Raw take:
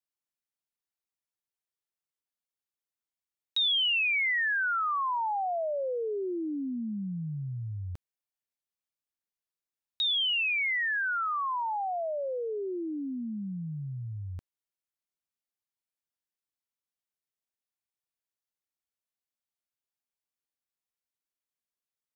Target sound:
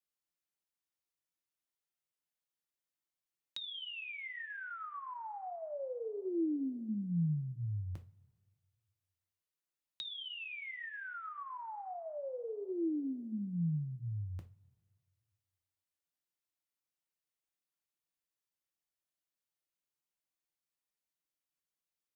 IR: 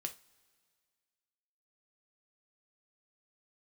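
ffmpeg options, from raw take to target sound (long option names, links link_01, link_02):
-filter_complex "[1:a]atrim=start_sample=2205[link_01];[0:a][link_01]afir=irnorm=-1:irlink=0,acrossover=split=350[link_02][link_03];[link_03]acompressor=threshold=-44dB:ratio=6[link_04];[link_02][link_04]amix=inputs=2:normalize=0"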